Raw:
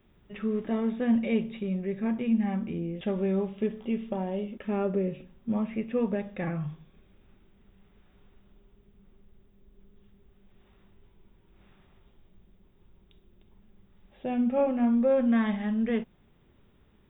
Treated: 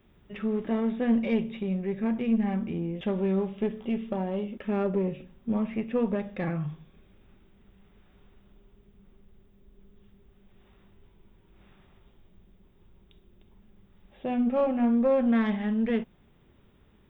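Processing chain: single-diode clipper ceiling -21 dBFS; trim +2 dB

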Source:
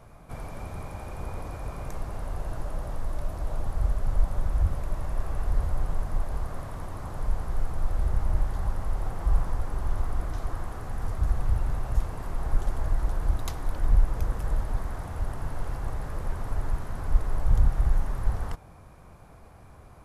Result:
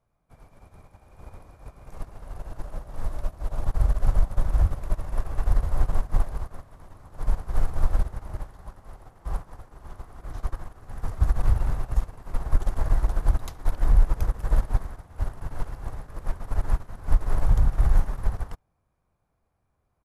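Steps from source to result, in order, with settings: 8.02–10.24 s: bass shelf 73 Hz -10 dB; delay 71 ms -20.5 dB; loudness maximiser +16 dB; upward expansion 2.5:1, over -26 dBFS; trim -6 dB

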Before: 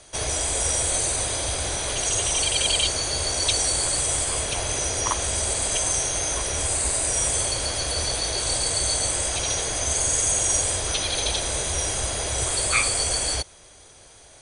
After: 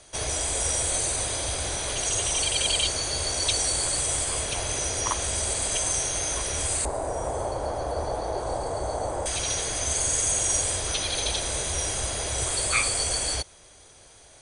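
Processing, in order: 6.85–9.26 s: FFT filter 170 Hz 0 dB, 840 Hz +9 dB, 2.6 kHz -17 dB; trim -2.5 dB

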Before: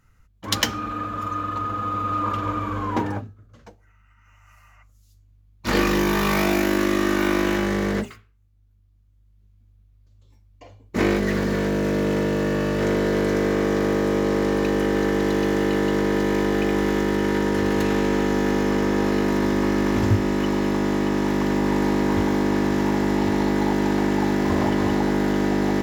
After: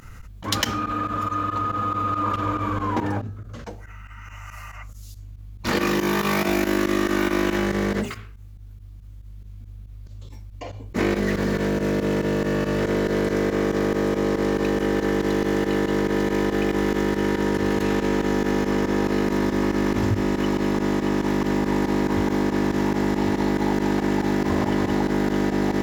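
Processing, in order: volume shaper 140 bpm, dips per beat 2, -18 dB, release 63 ms; 5.69–6.49 s: high-pass 86 Hz 12 dB/octave; level flattener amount 50%; trim -4 dB

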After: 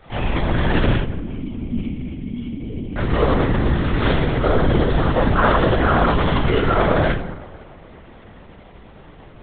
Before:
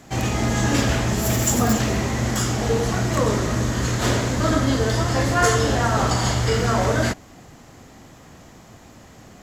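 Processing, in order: 0.96–2.97 s: cascade formant filter i; tape echo 212 ms, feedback 66%, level -15.5 dB, low-pass 1.6 kHz; reverberation RT60 0.60 s, pre-delay 4 ms, DRR -1.5 dB; LPC vocoder at 8 kHz whisper; trim -3.5 dB

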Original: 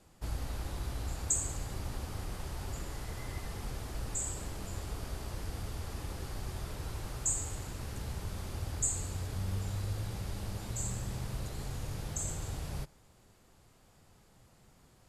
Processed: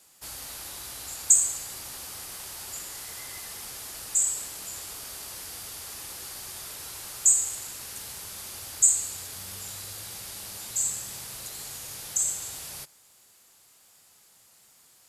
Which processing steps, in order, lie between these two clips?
tilt EQ +4.5 dB/octave

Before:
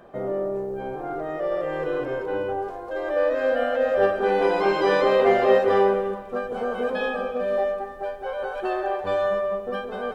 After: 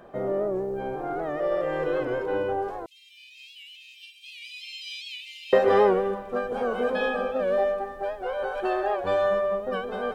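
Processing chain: 2.86–5.53 s: steep high-pass 2.4 kHz 96 dB/octave; warped record 78 rpm, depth 100 cents

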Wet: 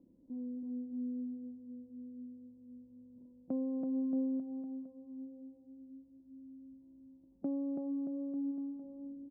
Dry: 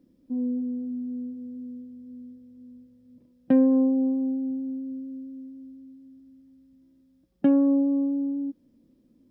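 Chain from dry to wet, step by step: elliptic low-pass 1 kHz, stop band 40 dB; compression 1.5:1, threshold -58 dBFS, peak gain reduction 15 dB; bouncing-ball echo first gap 330 ms, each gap 0.9×, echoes 5; trim -2.5 dB

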